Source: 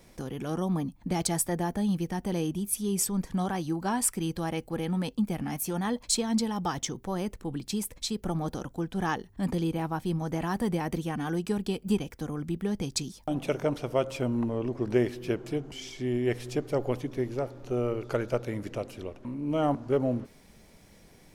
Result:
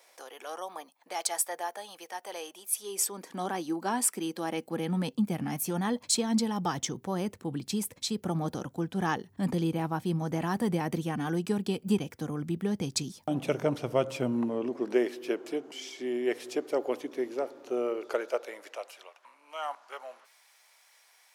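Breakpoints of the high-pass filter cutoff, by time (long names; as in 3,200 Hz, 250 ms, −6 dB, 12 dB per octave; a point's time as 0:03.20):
high-pass filter 24 dB per octave
0:02.66 560 Hz
0:03.46 240 Hz
0:04.39 240 Hz
0:05.33 96 Hz
0:13.98 96 Hz
0:15.00 290 Hz
0:17.84 290 Hz
0:19.22 870 Hz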